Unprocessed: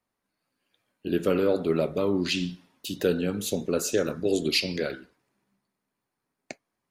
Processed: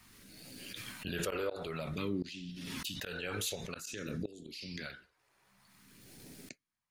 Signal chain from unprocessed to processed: 1.87–4.35 dynamic EQ 2100 Hz, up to +7 dB, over -46 dBFS, Q 1.1; phaser stages 2, 0.52 Hz, lowest notch 210–1100 Hz; flipped gate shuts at -18 dBFS, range -25 dB; backwards sustainer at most 22 dB/s; gain -7 dB

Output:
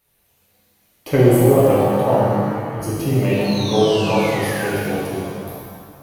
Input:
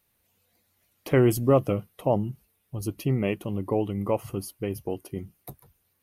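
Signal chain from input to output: 1.16–1.57 band shelf 2600 Hz -14.5 dB 2.6 oct; 3.44–4.73 painted sound fall 1400–4400 Hz -39 dBFS; shimmer reverb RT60 1.8 s, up +7 st, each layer -8 dB, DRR -7 dB; gain +1.5 dB

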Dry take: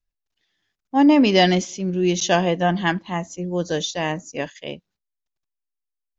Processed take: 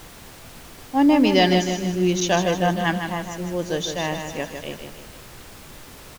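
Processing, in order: feedback echo 0.155 s, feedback 48%, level -7 dB; added noise pink -40 dBFS; gain -2 dB

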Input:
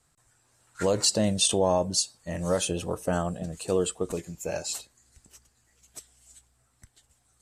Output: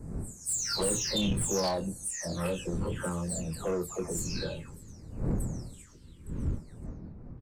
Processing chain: spectral delay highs early, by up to 0.57 s; wind noise 160 Hz -36 dBFS; LFO notch square 0.61 Hz 700–3200 Hz; soft clip -24.5 dBFS, distortion -12 dB; doubler 25 ms -8 dB

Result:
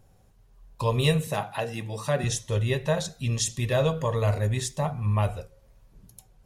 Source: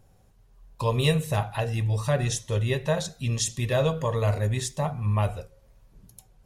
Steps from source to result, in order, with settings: 1.27–2.24 HPF 150 Hz 24 dB/oct

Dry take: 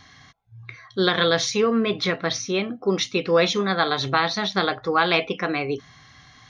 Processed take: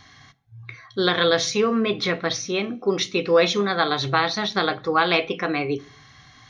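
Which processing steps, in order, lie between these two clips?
on a send: bell 840 Hz -7 dB 1.7 oct + reverb RT60 0.45 s, pre-delay 3 ms, DRR 12.5 dB

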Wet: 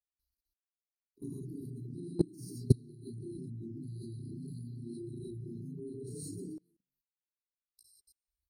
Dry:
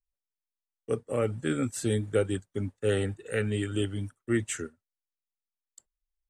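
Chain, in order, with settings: delay-line pitch shifter +7.5 st; brick-wall FIR band-stop 560–5200 Hz; on a send: frequency-shifting echo 99 ms, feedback 31%, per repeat +38 Hz, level -10 dB; on the sum: envelope phaser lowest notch 190 Hz, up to 4600 Hz, full sweep at -37 dBFS; HPF 45 Hz 12 dB/oct; low shelf 95 Hz -5.5 dB; notches 60/120/180/240/300/360 Hz; non-linear reverb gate 0.15 s rising, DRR -7.5 dB; speed mistake 45 rpm record played at 33 rpm; fixed phaser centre 2200 Hz, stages 6; level quantiser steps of 23 dB; reverb removal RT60 1 s; gain +6 dB

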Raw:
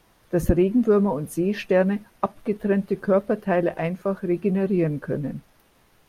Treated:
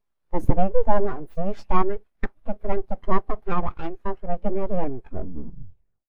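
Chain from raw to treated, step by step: tape stop at the end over 1.28 s; full-wave rectifier; spectral expander 1.5:1; gain +3.5 dB

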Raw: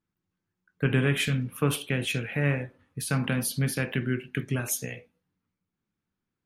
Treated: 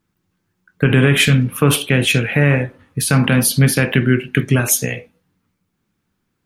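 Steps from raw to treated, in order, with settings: maximiser +15 dB; gain -1 dB

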